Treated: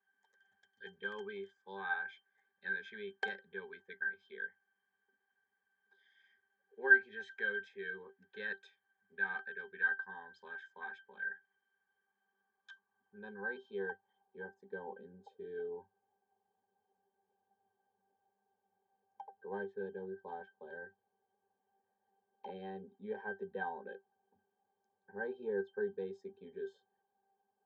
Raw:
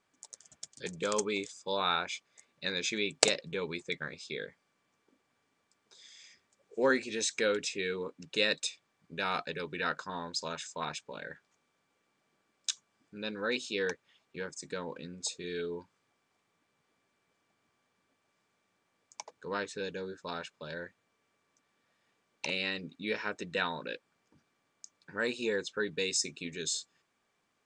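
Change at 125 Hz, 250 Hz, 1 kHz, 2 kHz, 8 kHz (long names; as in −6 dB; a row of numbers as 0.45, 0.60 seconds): below −10 dB, −11.5 dB, −9.0 dB, +1.0 dB, below −40 dB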